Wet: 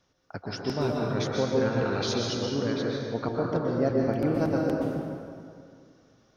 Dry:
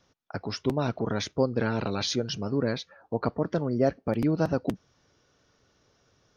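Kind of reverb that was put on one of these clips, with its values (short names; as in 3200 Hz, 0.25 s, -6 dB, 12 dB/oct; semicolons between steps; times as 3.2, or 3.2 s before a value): plate-style reverb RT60 2.3 s, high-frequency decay 0.65×, pre-delay 0.11 s, DRR -2 dB; gain -3.5 dB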